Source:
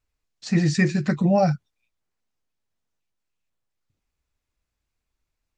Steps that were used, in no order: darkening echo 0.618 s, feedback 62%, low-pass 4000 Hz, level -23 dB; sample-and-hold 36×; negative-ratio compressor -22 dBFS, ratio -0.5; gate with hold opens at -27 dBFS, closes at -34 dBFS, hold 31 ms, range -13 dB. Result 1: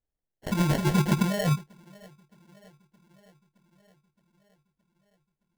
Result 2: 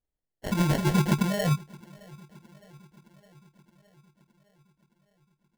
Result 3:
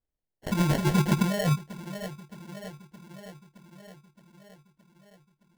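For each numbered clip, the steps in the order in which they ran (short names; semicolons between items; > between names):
darkening echo > gate with hold > negative-ratio compressor > sample-and-hold; negative-ratio compressor > gate with hold > darkening echo > sample-and-hold; gate with hold > darkening echo > negative-ratio compressor > sample-and-hold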